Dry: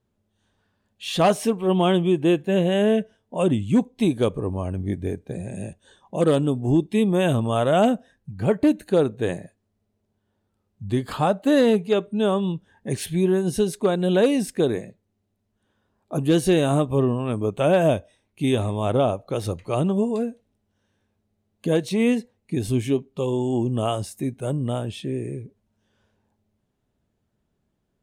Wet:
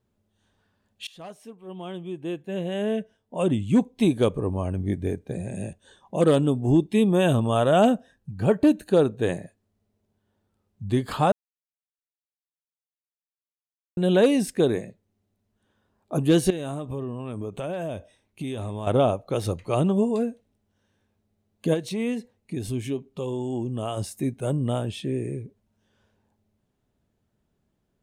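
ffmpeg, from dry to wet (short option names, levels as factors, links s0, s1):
-filter_complex "[0:a]asettb=1/sr,asplit=3[s0][s1][s2];[s0]atrim=end=6.984[s3];[s1]atrim=start=6.98:end=9.23,asetpts=PTS-STARTPTS,afade=t=in:d=0.004:c=qsin,afade=t=out:st=2.246:d=0.004:c=qsin,bandreject=f=2100:w=7.5[s4];[s2]atrim=start=9.226[s5];[s3][s4]acrossfade=d=0.004:c1=hsin:c2=qsin[s6];[s6][s5]acrossfade=d=0.004:c1=qsin:c2=hsin,asettb=1/sr,asplit=3[s7][s8][s9];[s7]atrim=end=16.504[s10];[s8]atrim=start=16.5:end=18.87,asetpts=PTS-STARTPTS,afade=t=in:d=0.004:c=qsin,afade=t=out:st=2.366:d=0.004:c=qsin,acompressor=threshold=0.0398:ratio=8:attack=3.2:release=140:knee=1:detection=peak[s11];[s9]atrim=start=18.866[s12];[s10][s11]acrossfade=d=0.004:c1=hsin:c2=qsin[s13];[s13][s12]acrossfade=d=0.004:c1=qsin:c2=hsin,asplit=3[s14][s15][s16];[s14]afade=t=out:st=21.73:d=0.02[s17];[s15]acompressor=threshold=0.0158:ratio=1.5:attack=3.2:release=140:knee=1:detection=peak,afade=t=in:st=21.73:d=0.02,afade=t=out:st=23.96:d=0.02[s18];[s16]afade=t=in:st=23.96:d=0.02[s19];[s17][s18][s19]amix=inputs=3:normalize=0,asplit=4[s20][s21][s22][s23];[s20]atrim=end=1.07,asetpts=PTS-STARTPTS,afade=t=out:st=1.066:d=0.004:c=hsin:silence=0.0668344[s24];[s21]atrim=start=1.07:end=11.32,asetpts=PTS-STARTPTS,afade=t=in:d=2.82:c=qua:silence=0.0668344,afade=t=out:st=10.246:d=0.004:c=hsin[s25];[s22]atrim=start=11.32:end=13.97,asetpts=PTS-STARTPTS,volume=0[s26];[s23]atrim=start=13.97,asetpts=PTS-STARTPTS,afade=t=in:d=0.004:c=hsin[s27];[s24][s25][s26][s27]concat=n=4:v=0:a=1"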